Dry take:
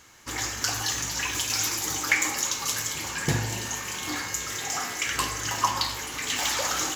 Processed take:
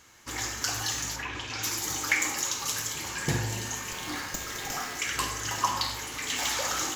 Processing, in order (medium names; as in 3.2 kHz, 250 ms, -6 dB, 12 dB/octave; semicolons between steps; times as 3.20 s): 1.15–1.62 s: low-pass 2 kHz -> 3.8 kHz 12 dB/octave; reverberation RT60 0.35 s, pre-delay 42 ms, DRR 9.5 dB; 3.92–4.98 s: sliding maximum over 3 samples; trim -3 dB